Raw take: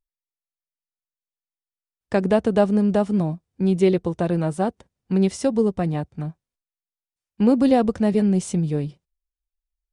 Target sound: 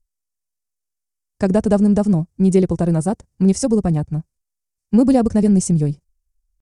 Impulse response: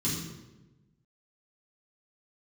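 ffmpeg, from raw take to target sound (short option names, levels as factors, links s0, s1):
-af "aemphasis=mode=reproduction:type=bsi,aexciter=amount=10.4:drive=4.7:freq=5200,atempo=1.5"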